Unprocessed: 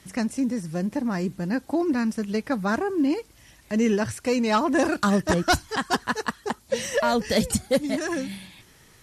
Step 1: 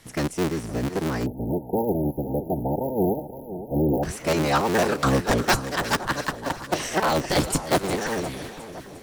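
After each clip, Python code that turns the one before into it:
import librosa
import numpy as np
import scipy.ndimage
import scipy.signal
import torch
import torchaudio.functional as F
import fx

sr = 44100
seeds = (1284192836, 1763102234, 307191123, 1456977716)

y = fx.cycle_switch(x, sr, every=3, mode='inverted')
y = fx.echo_split(y, sr, split_hz=1300.0, low_ms=515, high_ms=356, feedback_pct=52, wet_db=-12.5)
y = fx.spec_erase(y, sr, start_s=1.26, length_s=2.77, low_hz=930.0, high_hz=11000.0)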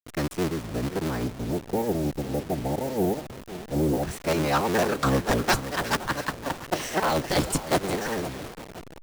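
y = fx.delta_hold(x, sr, step_db=-32.0)
y = y * librosa.db_to_amplitude(-2.0)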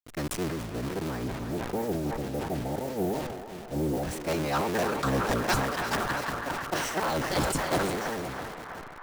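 y = fx.echo_banded(x, sr, ms=325, feedback_pct=80, hz=1300.0, wet_db=-7)
y = fx.sustainer(y, sr, db_per_s=39.0)
y = y * librosa.db_to_amplitude(-5.0)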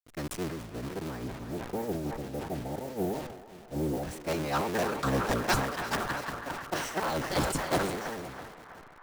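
y = fx.upward_expand(x, sr, threshold_db=-40.0, expansion=1.5)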